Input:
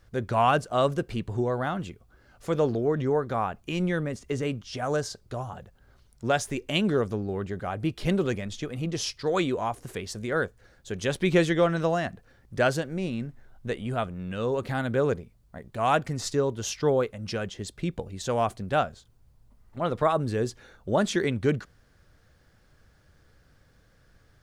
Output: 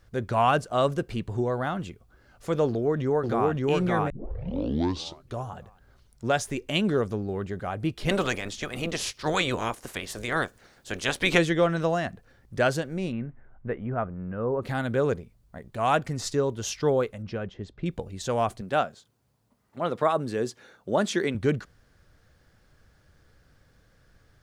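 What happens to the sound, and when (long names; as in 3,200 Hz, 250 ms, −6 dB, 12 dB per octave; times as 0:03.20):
0:02.66–0:03.51: delay throw 570 ms, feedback 30%, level −0.5 dB
0:04.10: tape start 1.29 s
0:08.08–0:11.37: ceiling on every frequency bin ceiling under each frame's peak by 18 dB
0:13.11–0:14.61: low-pass filter 2,500 Hz → 1,400 Hz 24 dB per octave
0:17.22–0:17.86: head-to-tape spacing loss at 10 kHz 28 dB
0:18.61–0:21.35: high-pass filter 170 Hz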